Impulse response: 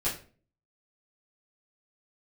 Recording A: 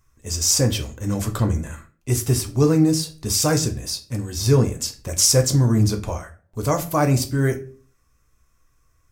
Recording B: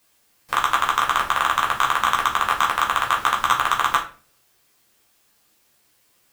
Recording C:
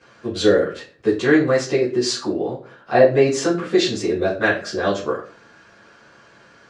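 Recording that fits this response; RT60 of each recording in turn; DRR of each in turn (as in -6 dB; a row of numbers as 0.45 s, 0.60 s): C; 0.40 s, 0.40 s, 0.40 s; 5.0 dB, -3.0 dB, -11.0 dB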